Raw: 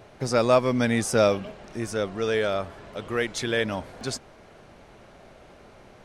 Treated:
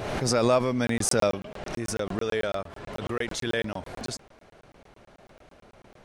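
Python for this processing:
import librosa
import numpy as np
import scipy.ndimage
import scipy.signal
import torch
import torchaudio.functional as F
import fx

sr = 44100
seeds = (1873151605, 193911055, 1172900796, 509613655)

y = fx.buffer_crackle(x, sr, first_s=0.87, period_s=0.11, block=1024, kind='zero')
y = fx.pre_swell(y, sr, db_per_s=35.0)
y = y * librosa.db_to_amplitude(-3.5)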